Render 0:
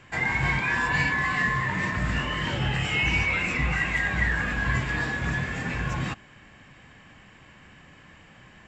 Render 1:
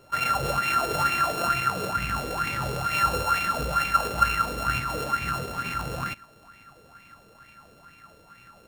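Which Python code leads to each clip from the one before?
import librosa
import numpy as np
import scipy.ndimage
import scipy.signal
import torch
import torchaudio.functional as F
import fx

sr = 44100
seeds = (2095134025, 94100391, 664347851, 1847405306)

y = np.r_[np.sort(x[:len(x) // 32 * 32].reshape(-1, 32), axis=1).ravel(), x[len(x) // 32 * 32:]]
y = fx.bell_lfo(y, sr, hz=2.2, low_hz=440.0, high_hz=2400.0, db=17)
y = y * 10.0 ** (-6.0 / 20.0)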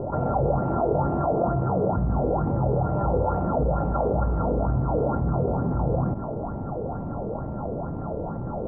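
y = scipy.signal.sosfilt(scipy.signal.butter(6, 840.0, 'lowpass', fs=sr, output='sos'), x)
y = fx.env_flatten(y, sr, amount_pct=70)
y = y * 10.0 ** (6.0 / 20.0)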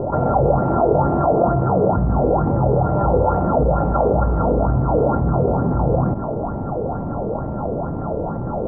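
y = fx.bass_treble(x, sr, bass_db=-2, treble_db=-14)
y = y * 10.0 ** (7.5 / 20.0)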